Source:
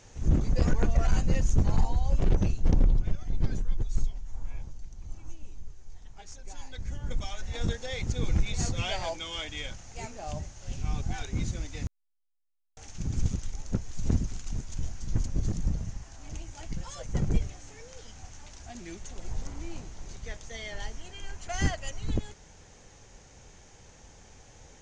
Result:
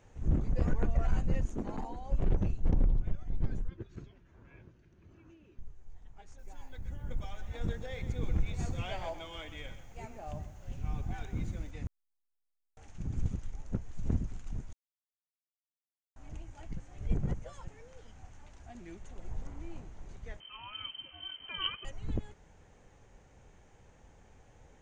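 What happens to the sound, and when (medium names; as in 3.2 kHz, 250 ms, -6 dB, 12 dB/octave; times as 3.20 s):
1.45–2.12 s: resonant low shelf 170 Hz -13 dB, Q 1.5
3.69–5.59 s: cabinet simulation 120–5400 Hz, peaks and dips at 360 Hz +9 dB, 800 Hz -10 dB, 1.6 kHz +7 dB, 2.6 kHz +5 dB
6.25–11.71 s: bit-crushed delay 126 ms, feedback 35%, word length 9-bit, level -11.5 dB
14.73–16.16 s: mute
16.80–17.68 s: reverse
20.40–21.85 s: frequency inversion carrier 3.1 kHz
whole clip: peaking EQ 5.4 kHz -14 dB 1.4 oct; trim -5 dB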